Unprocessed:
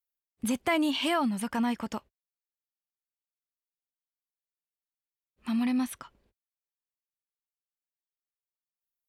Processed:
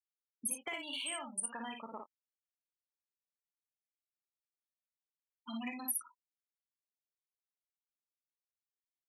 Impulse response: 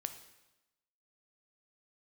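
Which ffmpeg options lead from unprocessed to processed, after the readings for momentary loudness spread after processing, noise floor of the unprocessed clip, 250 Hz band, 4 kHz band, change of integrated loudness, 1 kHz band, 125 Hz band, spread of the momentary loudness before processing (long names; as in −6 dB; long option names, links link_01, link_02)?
12 LU, below −85 dBFS, −18.5 dB, −8.0 dB, −10.0 dB, −12.5 dB, can't be measured, 12 LU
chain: -filter_complex "[0:a]afftfilt=real='re*gte(hypot(re,im),0.0282)':imag='im*gte(hypot(re,im),0.0282)':win_size=1024:overlap=0.75,highpass=440,asplit=2[link_01][link_02];[link_02]adelay=22,volume=-13.5dB[link_03];[link_01][link_03]amix=inputs=2:normalize=0,aexciter=amount=3.1:drive=5.3:freq=2100,acompressor=threshold=-36dB:ratio=10,highshelf=frequency=6400:width_type=q:width=1.5:gain=11,asplit=2[link_04][link_05];[link_05]aecho=0:1:45|57:0.299|0.596[link_06];[link_04][link_06]amix=inputs=2:normalize=0,acrossover=split=2900[link_07][link_08];[link_08]acompressor=threshold=-41dB:ratio=4:attack=1:release=60[link_09];[link_07][link_09]amix=inputs=2:normalize=0,aemphasis=mode=production:type=50kf,volume=-4dB"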